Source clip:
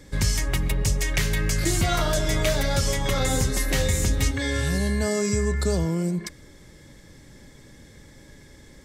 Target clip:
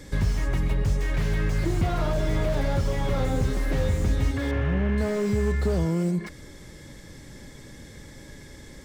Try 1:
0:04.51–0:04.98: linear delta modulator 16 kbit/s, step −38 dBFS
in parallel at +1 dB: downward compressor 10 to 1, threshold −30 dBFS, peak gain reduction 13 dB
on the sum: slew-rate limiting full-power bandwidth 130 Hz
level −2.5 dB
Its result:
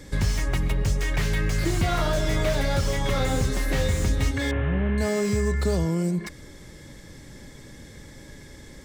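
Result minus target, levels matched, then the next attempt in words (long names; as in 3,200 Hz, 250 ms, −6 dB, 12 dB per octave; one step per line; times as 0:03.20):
slew-rate limiting: distortion −4 dB
0:04.51–0:04.98: linear delta modulator 16 kbit/s, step −38 dBFS
in parallel at +1 dB: downward compressor 10 to 1, threshold −30 dBFS, peak gain reduction 13 dB
on the sum: slew-rate limiting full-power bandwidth 49 Hz
level −2.5 dB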